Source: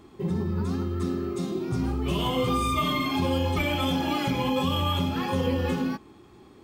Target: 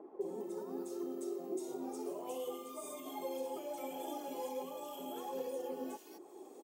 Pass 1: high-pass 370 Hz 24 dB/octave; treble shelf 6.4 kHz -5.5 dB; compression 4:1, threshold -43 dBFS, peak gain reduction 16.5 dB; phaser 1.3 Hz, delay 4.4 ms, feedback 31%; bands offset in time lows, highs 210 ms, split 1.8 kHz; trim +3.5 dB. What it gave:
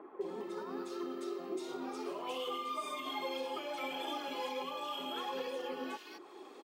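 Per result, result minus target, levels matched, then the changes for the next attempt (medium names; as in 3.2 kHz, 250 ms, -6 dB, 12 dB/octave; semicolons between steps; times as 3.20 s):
2 kHz band +11.5 dB; 8 kHz band -6.0 dB
add after compression: high-order bell 2.3 kHz -14.5 dB 2.5 oct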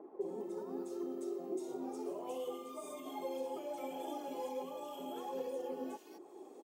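8 kHz band -5.0 dB
change: treble shelf 6.4 kHz +3.5 dB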